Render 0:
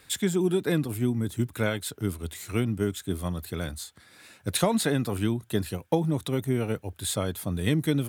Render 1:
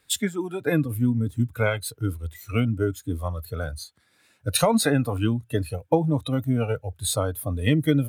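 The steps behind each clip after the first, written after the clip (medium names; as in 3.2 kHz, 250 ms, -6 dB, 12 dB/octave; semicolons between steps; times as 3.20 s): spectral noise reduction 15 dB; trim +5 dB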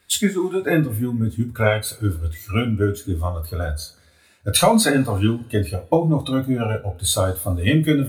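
two-slope reverb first 0.21 s, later 1.6 s, from -28 dB, DRR 1 dB; trim +3 dB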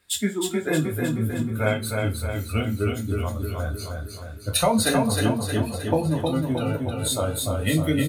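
feedback delay 312 ms, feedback 55%, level -4 dB; trim -5.5 dB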